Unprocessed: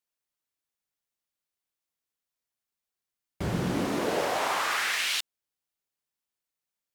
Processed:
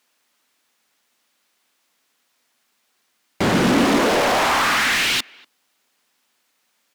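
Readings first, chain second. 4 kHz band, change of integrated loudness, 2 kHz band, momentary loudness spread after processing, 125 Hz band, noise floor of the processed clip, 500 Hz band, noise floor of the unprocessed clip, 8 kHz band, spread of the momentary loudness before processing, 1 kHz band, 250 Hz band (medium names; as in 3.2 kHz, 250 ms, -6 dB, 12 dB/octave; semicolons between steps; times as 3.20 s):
+10.0 dB, +10.5 dB, +11.0 dB, 6 LU, +7.0 dB, -69 dBFS, +10.5 dB, under -85 dBFS, +9.0 dB, 7 LU, +11.0 dB, +12.5 dB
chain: overdrive pedal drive 29 dB, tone 4 kHz, clips at -15.5 dBFS; peaking EQ 240 Hz +9.5 dB 0.59 oct; speakerphone echo 240 ms, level -25 dB; trim +3.5 dB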